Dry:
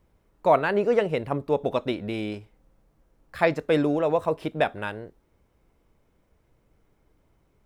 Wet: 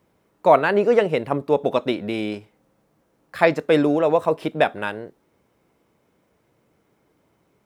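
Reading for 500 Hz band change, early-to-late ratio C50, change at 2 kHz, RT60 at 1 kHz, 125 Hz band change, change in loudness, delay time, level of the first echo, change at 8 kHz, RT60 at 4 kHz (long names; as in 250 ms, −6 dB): +5.0 dB, no reverb audible, +5.0 dB, no reverb audible, +1.5 dB, +5.0 dB, no echo audible, no echo audible, can't be measured, no reverb audible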